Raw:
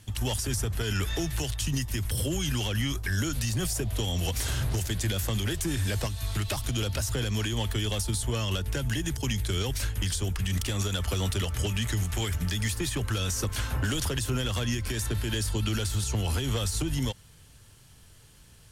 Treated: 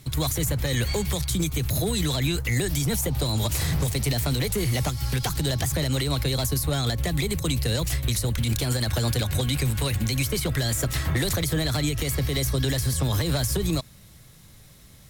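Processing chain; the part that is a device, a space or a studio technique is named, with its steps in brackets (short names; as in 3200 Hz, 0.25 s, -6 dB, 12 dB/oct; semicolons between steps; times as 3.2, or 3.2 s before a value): nightcore (varispeed +24%); gain +4 dB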